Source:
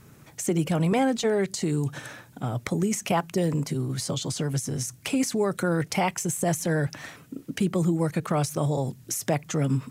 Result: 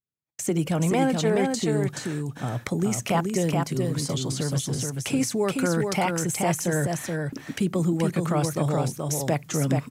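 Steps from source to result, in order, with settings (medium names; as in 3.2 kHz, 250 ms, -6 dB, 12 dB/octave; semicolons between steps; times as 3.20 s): gate -43 dBFS, range -48 dB; delay 427 ms -4 dB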